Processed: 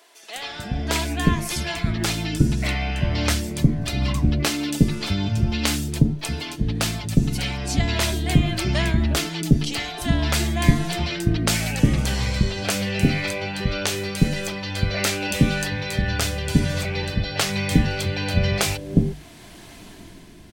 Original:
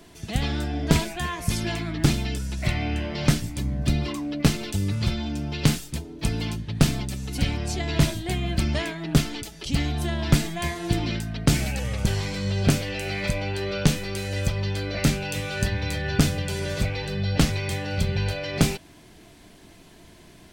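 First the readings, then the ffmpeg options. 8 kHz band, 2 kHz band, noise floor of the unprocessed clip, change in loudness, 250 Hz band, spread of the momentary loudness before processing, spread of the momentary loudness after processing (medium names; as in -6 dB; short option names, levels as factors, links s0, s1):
+4.5 dB, +4.0 dB, -50 dBFS, +3.0 dB, +3.5 dB, 6 LU, 6 LU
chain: -filter_complex "[0:a]bandreject=f=50:t=h:w=6,bandreject=f=100:t=h:w=6,bandreject=f=150:t=h:w=6,dynaudnorm=f=140:g=11:m=3.76,acrossover=split=460[s0][s1];[s0]adelay=360[s2];[s2][s1]amix=inputs=2:normalize=0"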